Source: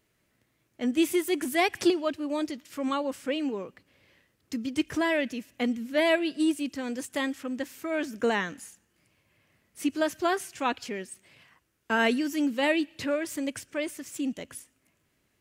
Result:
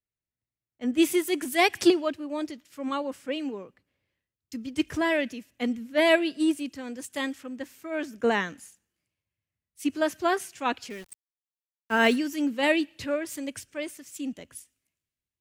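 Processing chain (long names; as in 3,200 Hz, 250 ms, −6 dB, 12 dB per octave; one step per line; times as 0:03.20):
0:10.90–0:12.16: centre clipping without the shift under −39.5 dBFS
multiband upward and downward expander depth 70%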